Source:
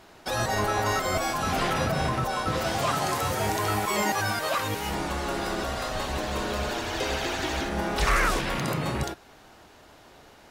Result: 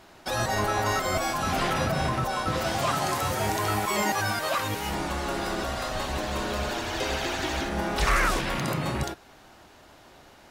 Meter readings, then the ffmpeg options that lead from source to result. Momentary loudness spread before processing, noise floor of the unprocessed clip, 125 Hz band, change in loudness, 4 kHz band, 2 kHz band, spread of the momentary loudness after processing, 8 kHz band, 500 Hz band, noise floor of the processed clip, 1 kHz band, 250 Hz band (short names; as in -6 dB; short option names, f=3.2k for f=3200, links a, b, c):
5 LU, -53 dBFS, 0.0 dB, 0.0 dB, 0.0 dB, 0.0 dB, 5 LU, 0.0 dB, -0.5 dB, -53 dBFS, 0.0 dB, 0.0 dB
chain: -af "bandreject=f=450:w=12"